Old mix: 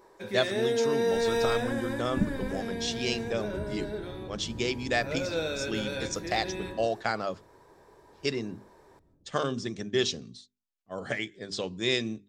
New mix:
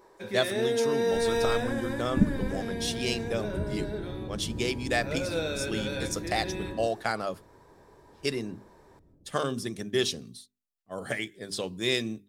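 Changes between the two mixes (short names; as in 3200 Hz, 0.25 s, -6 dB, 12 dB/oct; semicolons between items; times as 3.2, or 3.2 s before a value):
speech: remove steep low-pass 7500 Hz 48 dB/oct; second sound +5.0 dB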